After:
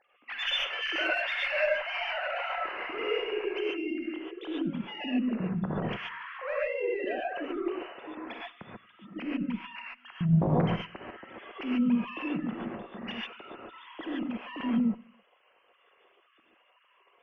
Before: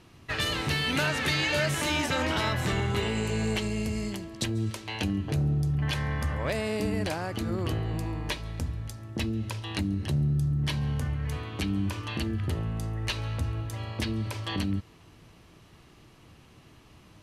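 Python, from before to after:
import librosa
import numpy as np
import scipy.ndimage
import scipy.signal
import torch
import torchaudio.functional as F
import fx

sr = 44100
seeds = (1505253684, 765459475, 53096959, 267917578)

y = fx.sine_speech(x, sr)
y = fx.highpass(y, sr, hz=930.0, slope=24, at=(9.46, 10.21))
y = fx.cheby_harmonics(y, sr, harmonics=(6,), levels_db=(-32,), full_scale_db=-11.5)
y = fx.doubler(y, sr, ms=50.0, db=-5.0, at=(2.86, 3.28))
y = fx.echo_feedback(y, sr, ms=97, feedback_pct=42, wet_db=-23)
y = fx.rev_gated(y, sr, seeds[0], gate_ms=160, shape='rising', drr_db=-4.0)
y = F.gain(torch.from_numpy(y), -7.0).numpy()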